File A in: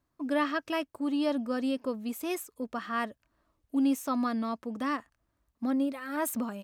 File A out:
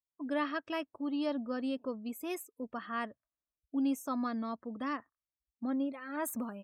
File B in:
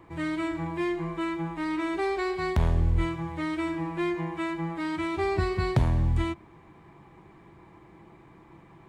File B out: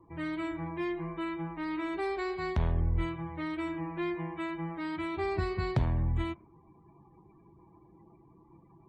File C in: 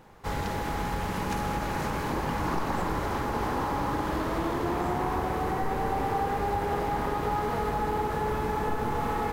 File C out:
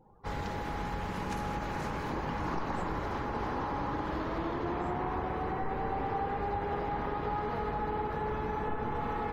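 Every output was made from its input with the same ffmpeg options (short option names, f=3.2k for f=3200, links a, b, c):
-af "afftdn=nr=26:nf=-51,volume=-5dB"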